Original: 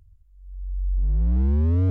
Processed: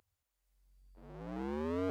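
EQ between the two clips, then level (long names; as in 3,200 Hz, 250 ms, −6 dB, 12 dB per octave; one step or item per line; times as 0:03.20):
high-pass filter 490 Hz 12 dB per octave
+2.5 dB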